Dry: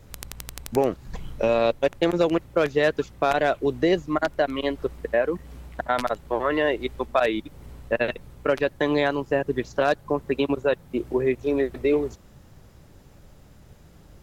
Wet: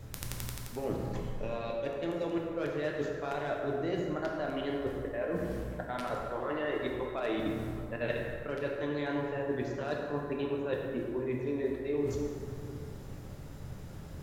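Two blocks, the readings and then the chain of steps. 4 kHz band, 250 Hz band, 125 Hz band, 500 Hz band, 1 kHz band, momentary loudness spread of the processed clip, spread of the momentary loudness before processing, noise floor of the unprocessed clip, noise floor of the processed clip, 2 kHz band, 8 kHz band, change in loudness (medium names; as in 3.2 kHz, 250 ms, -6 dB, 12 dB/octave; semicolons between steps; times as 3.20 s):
-11.5 dB, -8.0 dB, -3.0 dB, -10.5 dB, -12.0 dB, 9 LU, 9 LU, -51 dBFS, -44 dBFS, -11.5 dB, no reading, -10.5 dB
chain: peaking EQ 140 Hz +4.5 dB 0.95 oct; reverse; compression 10:1, threshold -34 dBFS, peak gain reduction 19.5 dB; reverse; plate-style reverb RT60 2.6 s, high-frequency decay 0.5×, pre-delay 0 ms, DRR -1.5 dB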